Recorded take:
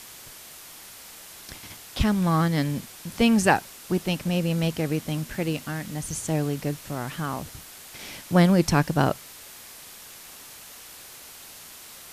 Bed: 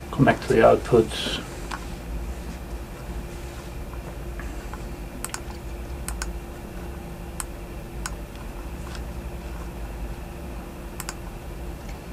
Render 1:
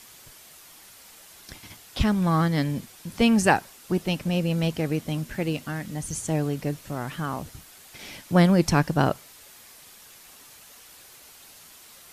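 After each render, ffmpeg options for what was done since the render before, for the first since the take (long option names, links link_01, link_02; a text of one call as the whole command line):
ffmpeg -i in.wav -af "afftdn=noise_reduction=6:noise_floor=-45" out.wav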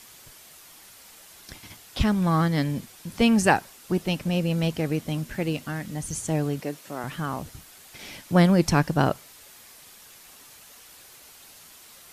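ffmpeg -i in.wav -filter_complex "[0:a]asettb=1/sr,asplit=3[link_01][link_02][link_03];[link_01]atrim=end=6.604[link_04];[link_02]atrim=start=6.6:end=7.04,asetpts=PTS-STARTPTS,afade=type=in:duration=0.004:curve=qsin,afade=type=out:start_time=0.436:duration=0.004:curve=qsin,highpass=260[link_05];[link_03]atrim=start=7.036[link_06];[link_04][link_05]acrossfade=duration=0.004:curve1=hsin:curve2=qsin[link_07];[link_07][link_06]acrossfade=duration=0.004:curve1=qsin:curve2=hsin" out.wav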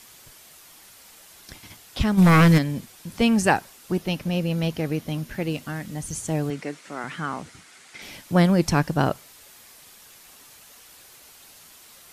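ffmpeg -i in.wav -filter_complex "[0:a]asplit=3[link_01][link_02][link_03];[link_01]afade=type=out:start_time=2.17:duration=0.02[link_04];[link_02]aeval=exprs='0.316*sin(PI/2*2.51*val(0)/0.316)':channel_layout=same,afade=type=in:start_time=2.17:duration=0.02,afade=type=out:start_time=2.57:duration=0.02[link_05];[link_03]afade=type=in:start_time=2.57:duration=0.02[link_06];[link_04][link_05][link_06]amix=inputs=3:normalize=0,asettb=1/sr,asplit=3[link_07][link_08][link_09];[link_07]atrim=end=3.984[link_10];[link_08]atrim=start=3.98:end=5.5,asetpts=PTS-STARTPTS,afade=type=in:duration=0.004:curve=qsin,afade=type=out:start_time=1.516:duration=0.004:curve=qsin,equalizer=frequency=7900:width=4.9:gain=-7[link_11];[link_09]atrim=start=5.496[link_12];[link_10][link_11]acrossfade=duration=0.004:curve1=hsin:curve2=qsin[link_13];[link_13][link_12]acrossfade=duration=0.004:curve1=qsin:curve2=hsin,asettb=1/sr,asplit=3[link_14][link_15][link_16];[link_14]atrim=end=6.504[link_17];[link_15]atrim=start=6.5:end=8.02,asetpts=PTS-STARTPTS,afade=type=in:duration=0.004:curve=qsin,afade=type=out:start_time=1.516:duration=0.004:curve=qsin,highpass=120,equalizer=frequency=120:width_type=q:width=4:gain=-7,equalizer=frequency=600:width_type=q:width=4:gain=-3,equalizer=frequency=1400:width_type=q:width=4:gain=5,equalizer=frequency=2100:width_type=q:width=4:gain=7,lowpass=frequency=9300:width=0.5412,lowpass=frequency=9300:width=1.3066[link_18];[link_16]atrim=start=8.016[link_19];[link_17][link_18]acrossfade=duration=0.004:curve1=hsin:curve2=qsin[link_20];[link_20][link_19]acrossfade=duration=0.004:curve1=qsin:curve2=hsin" out.wav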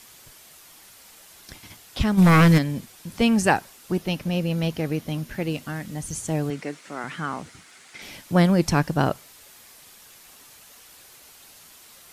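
ffmpeg -i in.wav -af "acrusher=bits=11:mix=0:aa=0.000001" out.wav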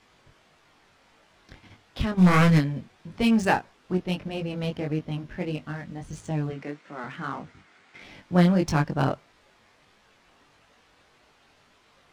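ffmpeg -i in.wav -af "flanger=delay=19.5:depth=3.1:speed=1.6,adynamicsmooth=sensitivity=6:basefreq=2600" out.wav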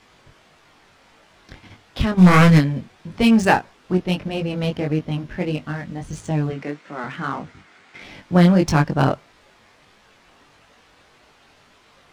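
ffmpeg -i in.wav -af "volume=6.5dB,alimiter=limit=-2dB:level=0:latency=1" out.wav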